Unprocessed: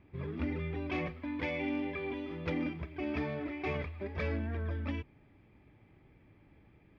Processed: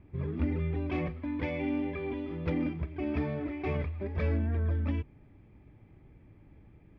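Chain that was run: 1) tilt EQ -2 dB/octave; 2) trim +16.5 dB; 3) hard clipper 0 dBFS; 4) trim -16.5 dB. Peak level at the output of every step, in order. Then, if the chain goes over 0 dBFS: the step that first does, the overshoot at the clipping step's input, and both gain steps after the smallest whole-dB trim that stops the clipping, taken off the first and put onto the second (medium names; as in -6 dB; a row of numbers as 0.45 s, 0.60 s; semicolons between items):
-18.5 dBFS, -2.0 dBFS, -2.0 dBFS, -18.5 dBFS; nothing clips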